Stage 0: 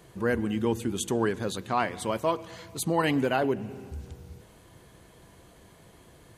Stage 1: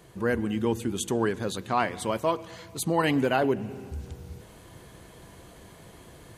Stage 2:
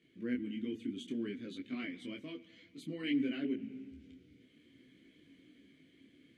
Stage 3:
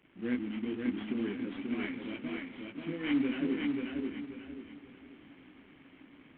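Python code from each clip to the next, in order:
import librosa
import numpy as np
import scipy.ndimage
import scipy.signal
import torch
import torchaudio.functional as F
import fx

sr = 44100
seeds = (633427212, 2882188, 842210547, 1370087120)

y1 = fx.rider(x, sr, range_db=5, speed_s=2.0)
y2 = fx.vowel_filter(y1, sr, vowel='i')
y2 = fx.detune_double(y2, sr, cents=20)
y2 = y2 * 10.0 ** (4.0 / 20.0)
y3 = fx.cvsd(y2, sr, bps=16000)
y3 = fx.echo_feedback(y3, sr, ms=537, feedback_pct=33, wet_db=-3.5)
y3 = y3 * 10.0 ** (3.5 / 20.0)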